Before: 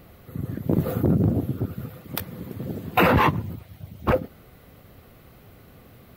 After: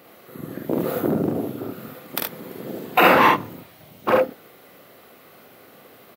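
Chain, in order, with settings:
high-pass filter 330 Hz 12 dB per octave
on a send: ambience of single reflections 46 ms −3 dB, 73 ms −3.5 dB
on the sum: level +3 dB

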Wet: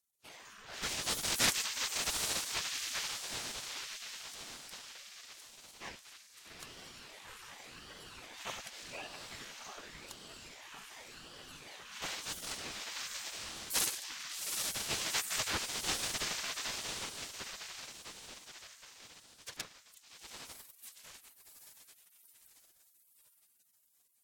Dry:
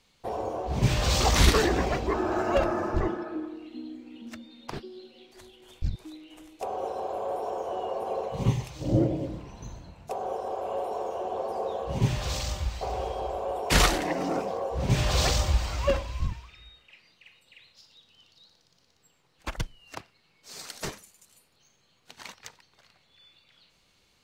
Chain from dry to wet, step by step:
feedback delay with all-pass diffusion 804 ms, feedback 52%, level −3 dB
gate on every frequency bin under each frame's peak −25 dB weak
ring modulator whose carrier an LFO sweeps 970 Hz, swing 80%, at 0.88 Hz
level +3.5 dB

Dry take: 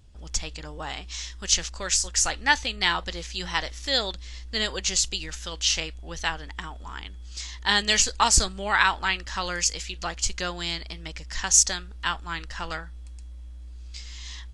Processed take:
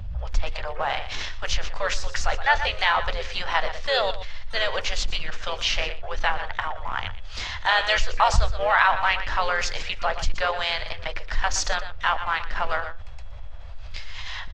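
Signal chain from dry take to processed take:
elliptic band-stop filter 100–570 Hz, stop band 50 dB
low-shelf EQ 100 Hz +6.5 dB
mains-hum notches 60/120/180/240/300/360/420/480/540 Hz
pitch-shifted copies added −4 semitones −11 dB, +12 semitones −16 dB
in parallel at −11 dB: bit reduction 5 bits
on the sum: head-to-tape spacing loss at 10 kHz 38 dB
on a send: single-tap delay 120 ms −17 dB
on the sum: envelope flattener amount 50%

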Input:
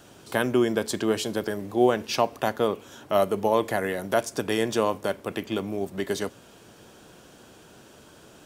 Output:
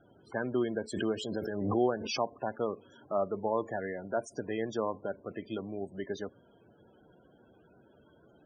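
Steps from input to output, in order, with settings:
0:03.64–0:04.67: dynamic equaliser 3,600 Hz, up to −7 dB, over −52 dBFS, Q 4.7
spectral peaks only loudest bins 32
0:00.93–0:02.20: background raised ahead of every attack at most 38 dB per second
level −8.5 dB

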